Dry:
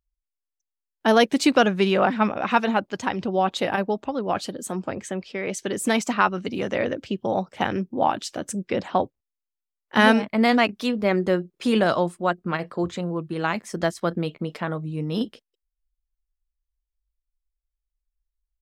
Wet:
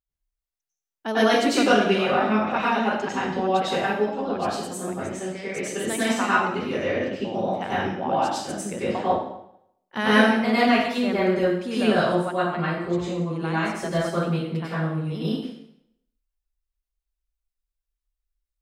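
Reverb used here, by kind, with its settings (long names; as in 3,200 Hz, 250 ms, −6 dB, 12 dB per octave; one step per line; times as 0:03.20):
dense smooth reverb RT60 0.75 s, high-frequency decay 0.9×, pre-delay 85 ms, DRR −10 dB
level −10 dB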